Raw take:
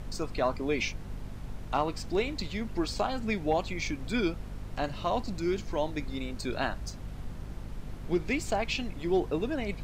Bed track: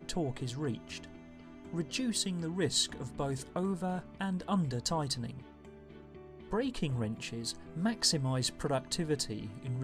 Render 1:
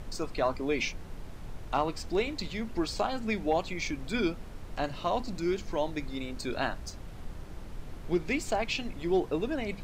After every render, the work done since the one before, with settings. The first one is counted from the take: notches 50/100/150/200/250 Hz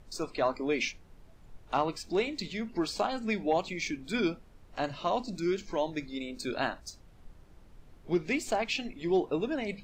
noise print and reduce 13 dB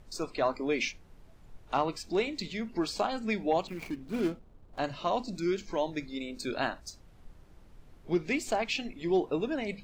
3.67–4.79 median filter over 25 samples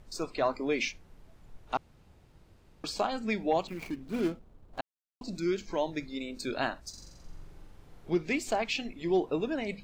1.77–2.84 room tone; 4.81–5.21 mute; 6.89–8.1 flutter echo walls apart 7.5 m, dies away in 1 s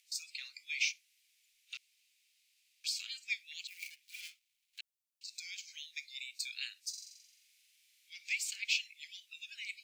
elliptic high-pass 2300 Hz, stop band 60 dB; high shelf 5200 Hz +5.5 dB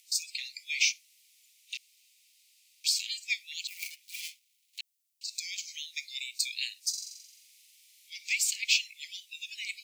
steep high-pass 1800 Hz 96 dB/oct; high shelf 2700 Hz +12 dB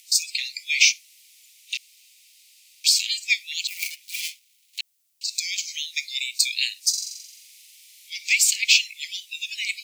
gain +10 dB; limiter -3 dBFS, peak gain reduction 2 dB

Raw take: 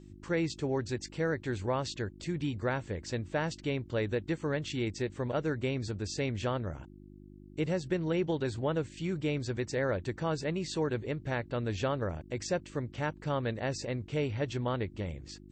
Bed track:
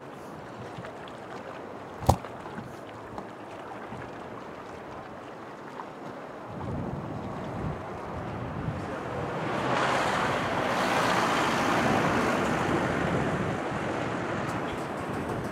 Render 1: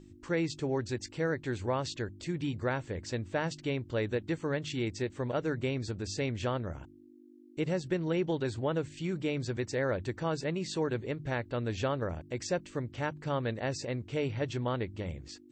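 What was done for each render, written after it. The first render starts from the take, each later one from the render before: de-hum 50 Hz, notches 4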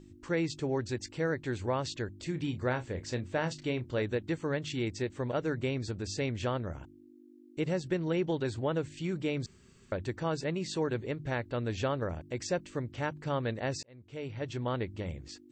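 2.22–4.02 doubler 32 ms -11 dB; 9.46–9.92 room tone; 13.83–14.76 fade in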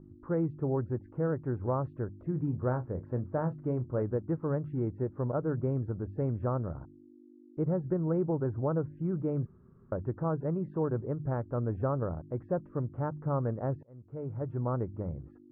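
Chebyshev low-pass 1300 Hz, order 4; bell 140 Hz +6 dB 0.9 oct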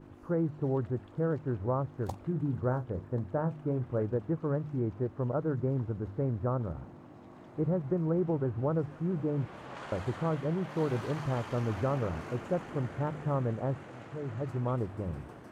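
add bed track -17.5 dB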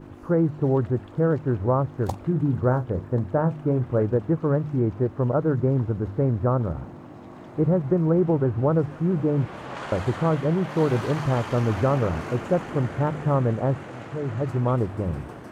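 gain +9 dB

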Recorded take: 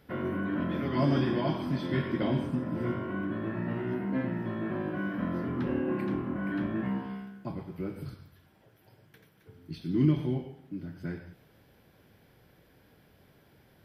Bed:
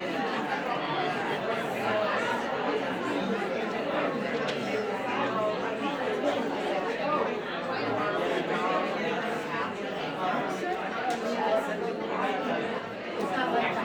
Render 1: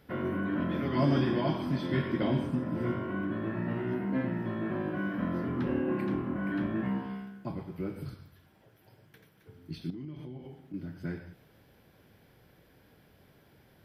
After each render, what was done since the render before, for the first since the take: 9.9–10.74 compressor, threshold -40 dBFS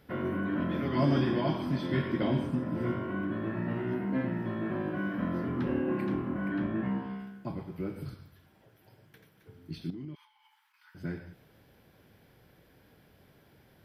6.48–7.2 high shelf 4300 Hz -6.5 dB; 10.15–10.95 brick-wall FIR high-pass 820 Hz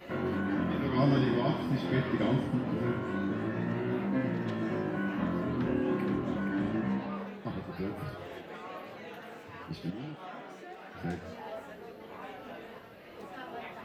add bed -15.5 dB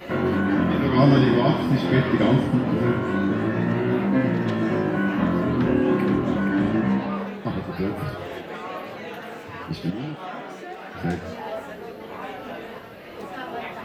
gain +10 dB

